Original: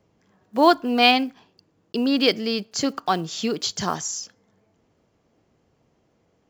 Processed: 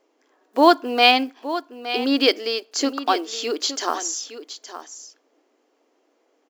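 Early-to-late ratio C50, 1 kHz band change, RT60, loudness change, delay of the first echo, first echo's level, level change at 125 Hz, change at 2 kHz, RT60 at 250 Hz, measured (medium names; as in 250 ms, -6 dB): no reverb, +2.0 dB, no reverb, +1.5 dB, 867 ms, -12.5 dB, under -20 dB, +2.0 dB, no reverb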